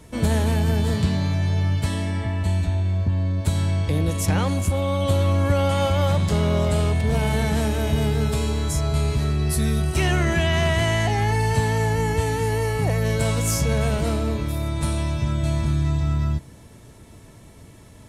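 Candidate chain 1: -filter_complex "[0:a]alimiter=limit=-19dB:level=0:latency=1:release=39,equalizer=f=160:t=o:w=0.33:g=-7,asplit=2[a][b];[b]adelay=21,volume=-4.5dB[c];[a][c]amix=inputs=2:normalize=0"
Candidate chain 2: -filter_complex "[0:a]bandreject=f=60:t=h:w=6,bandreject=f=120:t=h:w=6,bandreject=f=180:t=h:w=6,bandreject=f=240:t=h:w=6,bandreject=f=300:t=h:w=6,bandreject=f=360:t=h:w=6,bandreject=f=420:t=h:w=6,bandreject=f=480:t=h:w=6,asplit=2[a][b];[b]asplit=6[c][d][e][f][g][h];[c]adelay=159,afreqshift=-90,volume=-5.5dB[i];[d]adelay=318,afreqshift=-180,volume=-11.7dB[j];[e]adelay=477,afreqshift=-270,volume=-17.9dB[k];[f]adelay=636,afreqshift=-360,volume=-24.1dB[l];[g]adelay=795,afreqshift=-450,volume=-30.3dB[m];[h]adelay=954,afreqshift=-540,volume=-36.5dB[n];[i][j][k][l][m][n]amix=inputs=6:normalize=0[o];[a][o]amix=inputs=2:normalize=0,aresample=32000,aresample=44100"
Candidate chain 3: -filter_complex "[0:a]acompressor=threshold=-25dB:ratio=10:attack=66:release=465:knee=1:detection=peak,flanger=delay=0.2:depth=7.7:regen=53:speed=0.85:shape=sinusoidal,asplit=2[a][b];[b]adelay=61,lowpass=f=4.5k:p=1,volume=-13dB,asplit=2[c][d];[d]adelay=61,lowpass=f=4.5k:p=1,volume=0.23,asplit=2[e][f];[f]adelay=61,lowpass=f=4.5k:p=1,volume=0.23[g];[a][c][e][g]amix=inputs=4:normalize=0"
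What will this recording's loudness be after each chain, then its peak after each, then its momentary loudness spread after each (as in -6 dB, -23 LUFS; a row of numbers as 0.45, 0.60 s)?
-26.0, -21.5, -32.0 LUFS; -14.0, -8.0, -15.5 dBFS; 6, 4, 5 LU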